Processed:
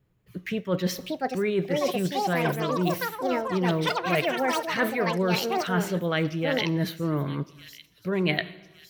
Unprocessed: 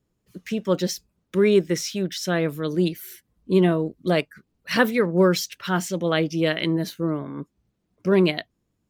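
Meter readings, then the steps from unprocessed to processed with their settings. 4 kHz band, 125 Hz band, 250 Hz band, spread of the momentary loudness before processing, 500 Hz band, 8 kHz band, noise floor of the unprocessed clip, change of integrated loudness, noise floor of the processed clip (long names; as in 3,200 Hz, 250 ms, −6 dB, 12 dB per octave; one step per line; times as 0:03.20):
−2.0 dB, −2.0 dB, −4.5 dB, 12 LU, −4.5 dB, −6.0 dB, −75 dBFS, −3.5 dB, −59 dBFS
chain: parametric band 5,400 Hz −5 dB 0.58 octaves
on a send: delay with a high-pass on its return 1,161 ms, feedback 57%, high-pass 4,900 Hz, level −12 dB
on the sum: dense smooth reverb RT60 0.98 s, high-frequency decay 0.9×, DRR 16 dB
delay with pitch and tempo change per echo 736 ms, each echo +6 semitones, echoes 3
reversed playback
downward compressor, threshold −25 dBFS, peak gain reduction 12.5 dB
reversed playback
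octave-band graphic EQ 125/250/2,000/8,000 Hz +7/−5/+4/−8 dB
level +3 dB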